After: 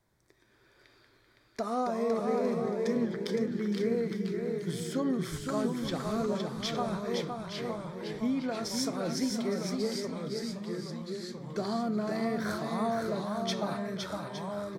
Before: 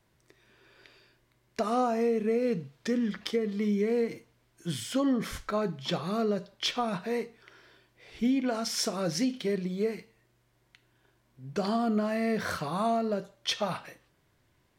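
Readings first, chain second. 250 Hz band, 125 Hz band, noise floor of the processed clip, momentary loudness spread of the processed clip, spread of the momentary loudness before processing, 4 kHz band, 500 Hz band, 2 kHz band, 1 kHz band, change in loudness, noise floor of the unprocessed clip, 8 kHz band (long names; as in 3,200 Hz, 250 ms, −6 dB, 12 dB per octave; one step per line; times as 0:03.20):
−1.0 dB, +1.0 dB, −65 dBFS, 7 LU, 7 LU, −3.5 dB, −1.5 dB, −2.5 dB, −2.0 dB, −2.5 dB, −70 dBFS, −2.0 dB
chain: delay with pitch and tempo change per echo 82 ms, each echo −2 semitones, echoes 3, each echo −6 dB
parametric band 2,800 Hz −13 dB 0.25 octaves
on a send: multi-tap delay 513/863 ms −5/−11.5 dB
on the sum: level −4 dB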